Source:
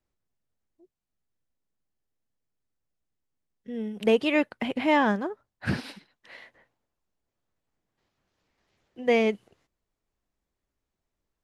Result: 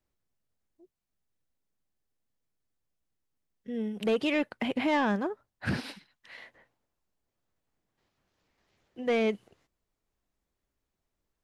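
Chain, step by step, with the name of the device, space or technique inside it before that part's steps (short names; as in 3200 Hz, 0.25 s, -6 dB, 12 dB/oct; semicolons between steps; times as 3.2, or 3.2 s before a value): 5.94–6.38 bell 420 Hz -8.5 dB 2 oct; soft clipper into limiter (soft clip -16.5 dBFS, distortion -17 dB; limiter -20.5 dBFS, peak gain reduction 3.5 dB)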